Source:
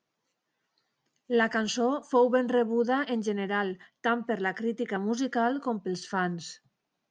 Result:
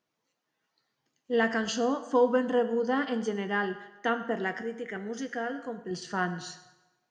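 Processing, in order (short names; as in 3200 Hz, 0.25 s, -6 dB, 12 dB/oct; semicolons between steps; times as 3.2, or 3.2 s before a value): 4.61–5.91 graphic EQ 250/1000/2000/4000 Hz -8/-12/+6/-9 dB; on a send: reverb RT60 1.1 s, pre-delay 5 ms, DRR 8 dB; on the sum: gain -1.5 dB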